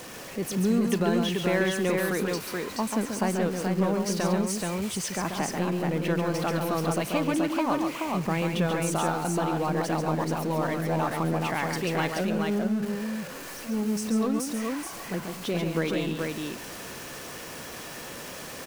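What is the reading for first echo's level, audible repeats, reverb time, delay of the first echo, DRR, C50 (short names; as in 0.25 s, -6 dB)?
-5.5 dB, 3, none, 0.137 s, none, none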